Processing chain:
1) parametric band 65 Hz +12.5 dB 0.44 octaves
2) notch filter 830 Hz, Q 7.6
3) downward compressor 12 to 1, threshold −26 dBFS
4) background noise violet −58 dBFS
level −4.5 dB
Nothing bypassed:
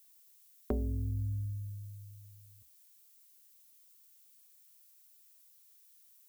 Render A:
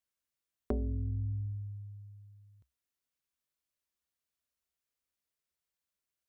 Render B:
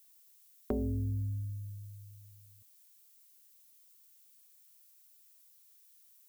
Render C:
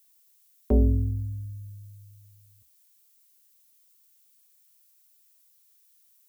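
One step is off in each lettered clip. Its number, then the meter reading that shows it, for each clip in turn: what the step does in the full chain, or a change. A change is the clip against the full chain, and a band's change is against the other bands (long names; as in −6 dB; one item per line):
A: 4, change in momentary loudness spread −3 LU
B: 1, 250 Hz band +3.5 dB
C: 3, average gain reduction 3.5 dB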